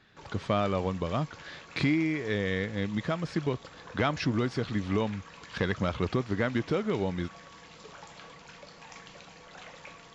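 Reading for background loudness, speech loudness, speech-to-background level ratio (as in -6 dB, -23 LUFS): -48.5 LUFS, -31.0 LUFS, 17.5 dB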